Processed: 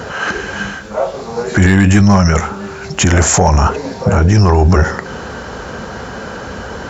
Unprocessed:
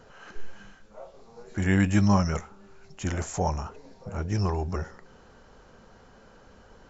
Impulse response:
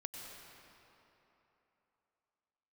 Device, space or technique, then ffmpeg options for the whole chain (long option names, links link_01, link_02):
mastering chain: -af "highpass=frequency=52:width=0.5412,highpass=frequency=52:width=1.3066,equalizer=frequency=1600:width_type=o:width=0.46:gain=3,acompressor=threshold=-29dB:ratio=2,asoftclip=type=tanh:threshold=-19.5dB,asoftclip=type=hard:threshold=-22dB,alimiter=level_in=28.5dB:limit=-1dB:release=50:level=0:latency=1,volume=-1dB"